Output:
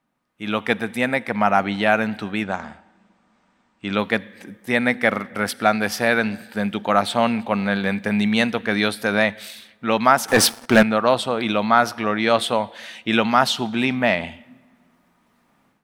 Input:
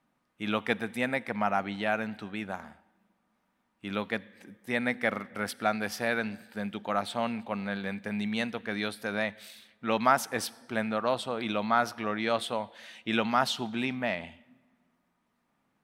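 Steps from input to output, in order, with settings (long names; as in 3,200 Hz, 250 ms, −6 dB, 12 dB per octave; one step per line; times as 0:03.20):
0:02.43–0:03.99: elliptic low-pass filter 8,300 Hz, stop band 40 dB
0:10.28–0:10.83: leveller curve on the samples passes 3
automatic gain control gain up to 13.5 dB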